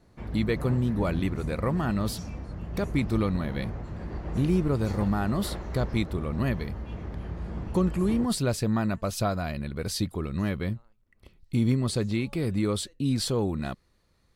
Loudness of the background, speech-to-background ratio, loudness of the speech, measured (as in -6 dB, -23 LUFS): -37.0 LUFS, 8.5 dB, -28.5 LUFS